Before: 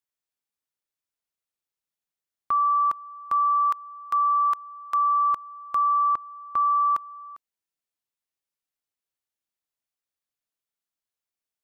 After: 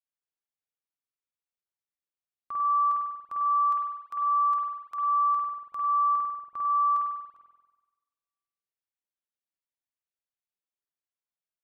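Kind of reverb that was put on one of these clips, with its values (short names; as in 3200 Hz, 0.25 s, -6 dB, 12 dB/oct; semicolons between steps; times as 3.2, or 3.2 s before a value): spring tank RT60 1.2 s, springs 47 ms, chirp 75 ms, DRR -3 dB; gain -13 dB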